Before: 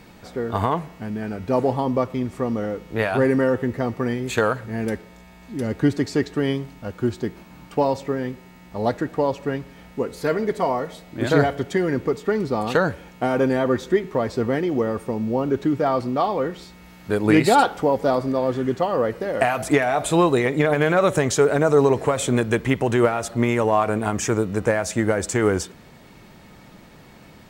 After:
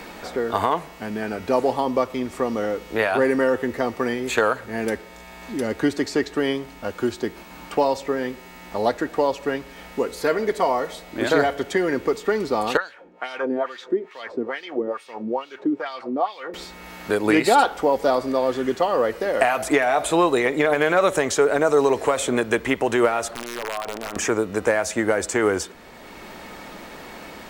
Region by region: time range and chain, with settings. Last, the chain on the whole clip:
12.77–16.54 HPF 69 Hz + wah 2.3 Hz 270–4000 Hz, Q 2.1
23.31–24.16 compressor 8:1, threshold -30 dBFS + wrapped overs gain 25.5 dB + Doppler distortion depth 0.6 ms
whole clip: bell 130 Hz -15 dB 1.5 oct; three-band squash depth 40%; gain +2.5 dB

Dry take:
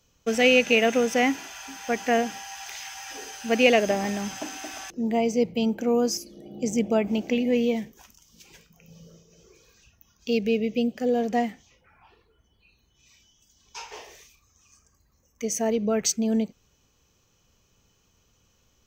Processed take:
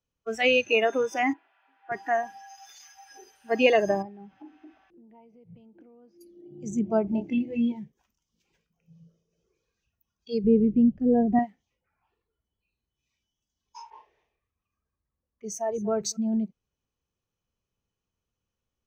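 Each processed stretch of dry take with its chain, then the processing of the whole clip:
1.33–1.92 switching spikes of -31.5 dBFS + BPF 510–3000 Hz + air absorption 390 m
2.49–2.92 comb 6.8 ms, depth 86% + core saturation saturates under 2200 Hz
4.02–6.21 compressor 4:1, threshold -34 dBFS + air absorption 320 m
7.07–7.72 notch 1300 Hz, Q 7 + doubler 26 ms -5.5 dB
10.44–11.39 tilt -3 dB/oct + mismatched tape noise reduction decoder only
13.9–16.17 echo 0.239 s -14 dB + low-pass opened by the level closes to 2300 Hz, open at -25 dBFS
whole clip: spectral noise reduction 19 dB; LPF 2800 Hz 6 dB/oct

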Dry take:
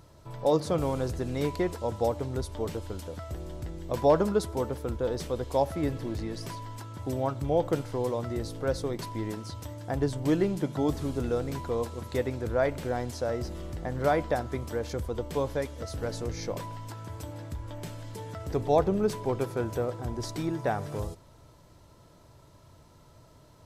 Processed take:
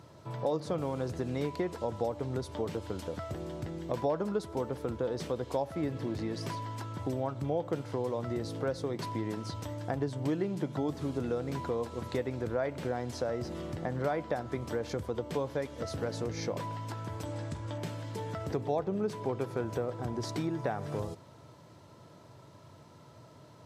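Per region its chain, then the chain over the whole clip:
17.25–17.78 LPF 9300 Hz 24 dB/oct + high shelf 6700 Hz +9 dB + doubler 46 ms -12.5 dB
whole clip: HPF 100 Hz 24 dB/oct; high shelf 7700 Hz -11 dB; compressor 3:1, threshold -34 dBFS; gain +3 dB

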